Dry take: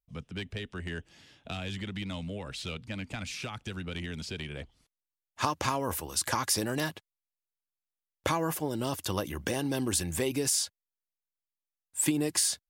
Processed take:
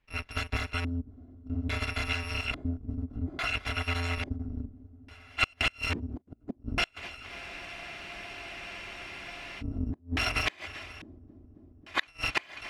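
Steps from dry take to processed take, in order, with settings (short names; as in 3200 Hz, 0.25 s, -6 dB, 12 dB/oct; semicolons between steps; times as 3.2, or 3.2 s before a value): FFT order left unsorted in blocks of 256 samples; in parallel at +3 dB: compressor 16:1, threshold -41 dBFS, peak gain reduction 19.5 dB; on the sum: multi-head echo 0.269 s, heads first and second, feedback 71%, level -23.5 dB; flipped gate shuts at -15 dBFS, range -32 dB; LFO low-pass square 0.59 Hz 260–2400 Hz; spectral freeze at 7.32, 2.27 s; gain +8.5 dB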